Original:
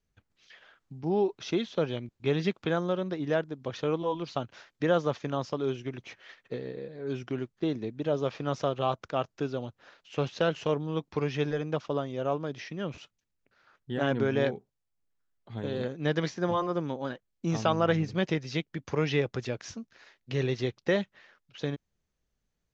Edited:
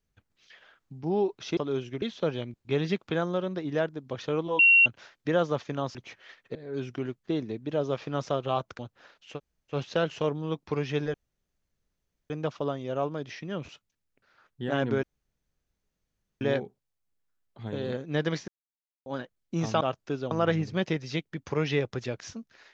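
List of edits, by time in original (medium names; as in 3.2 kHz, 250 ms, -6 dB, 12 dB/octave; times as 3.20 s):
4.14–4.41 s: bleep 2.74 kHz -14.5 dBFS
5.50–5.95 s: move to 1.57 s
6.55–6.88 s: delete
9.12–9.62 s: move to 17.72 s
10.18 s: insert room tone 0.38 s, crossfade 0.10 s
11.59 s: insert room tone 1.16 s
14.32 s: insert room tone 1.38 s
16.39–16.97 s: mute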